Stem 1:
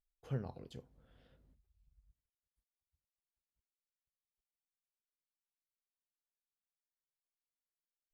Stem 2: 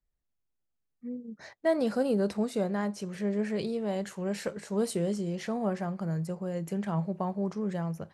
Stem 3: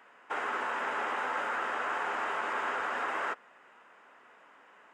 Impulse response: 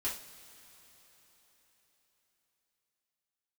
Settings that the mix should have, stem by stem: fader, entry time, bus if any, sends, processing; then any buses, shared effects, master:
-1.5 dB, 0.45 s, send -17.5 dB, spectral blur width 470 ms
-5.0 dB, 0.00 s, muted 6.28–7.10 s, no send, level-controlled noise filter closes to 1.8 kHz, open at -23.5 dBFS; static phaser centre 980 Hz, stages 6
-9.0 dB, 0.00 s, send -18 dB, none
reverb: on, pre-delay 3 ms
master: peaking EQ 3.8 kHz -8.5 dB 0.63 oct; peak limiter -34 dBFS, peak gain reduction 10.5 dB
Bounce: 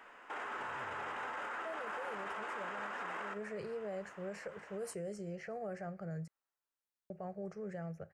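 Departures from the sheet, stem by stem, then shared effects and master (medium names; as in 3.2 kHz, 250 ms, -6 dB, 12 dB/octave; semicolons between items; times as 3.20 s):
stem 3 -9.0 dB -> +1.0 dB; master: missing peaking EQ 3.8 kHz -8.5 dB 0.63 oct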